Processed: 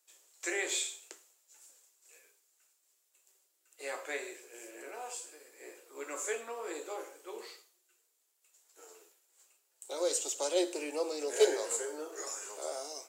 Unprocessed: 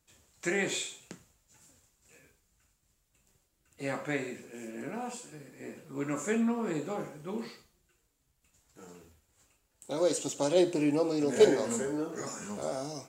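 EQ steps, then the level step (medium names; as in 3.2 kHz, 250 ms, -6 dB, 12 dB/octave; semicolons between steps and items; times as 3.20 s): steep high-pass 350 Hz 48 dB/octave; treble shelf 4 kHz +9.5 dB; -4.5 dB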